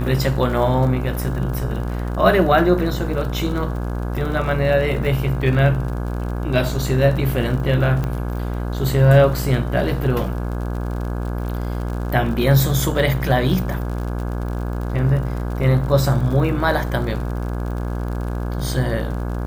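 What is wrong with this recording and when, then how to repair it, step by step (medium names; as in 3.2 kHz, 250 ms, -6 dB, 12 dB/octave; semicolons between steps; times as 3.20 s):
buzz 60 Hz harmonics 28 -24 dBFS
crackle 57 per s -28 dBFS
8.04 s: pop -12 dBFS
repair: de-click; de-hum 60 Hz, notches 28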